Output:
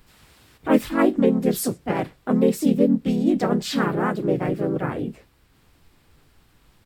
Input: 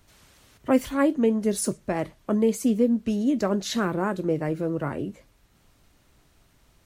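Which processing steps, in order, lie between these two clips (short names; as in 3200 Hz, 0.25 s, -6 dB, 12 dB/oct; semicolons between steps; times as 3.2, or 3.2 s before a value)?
harmoniser -7 st -15 dB, -3 st -3 dB, +3 st -1 dB; thirty-one-band EQ 630 Hz -4 dB, 6300 Hz -7 dB, 10000 Hz -4 dB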